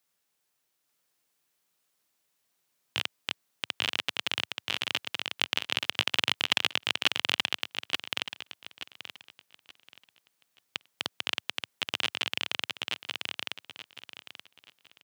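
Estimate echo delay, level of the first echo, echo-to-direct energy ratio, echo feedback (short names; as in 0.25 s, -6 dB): 0.879 s, -3.5 dB, -3.0 dB, 27%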